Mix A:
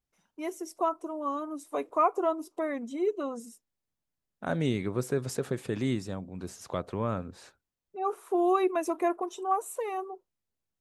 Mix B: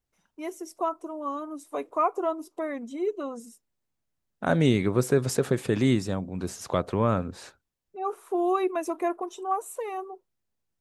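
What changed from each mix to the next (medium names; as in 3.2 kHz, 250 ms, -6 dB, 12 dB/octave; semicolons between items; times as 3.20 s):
second voice +7.0 dB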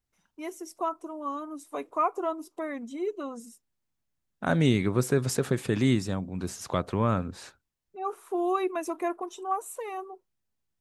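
master: add peaking EQ 520 Hz -4 dB 1.3 oct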